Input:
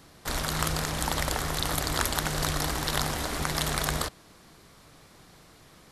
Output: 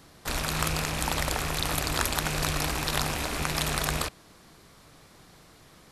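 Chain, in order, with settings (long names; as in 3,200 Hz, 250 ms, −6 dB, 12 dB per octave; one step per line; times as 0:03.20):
loose part that buzzes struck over −38 dBFS, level −25 dBFS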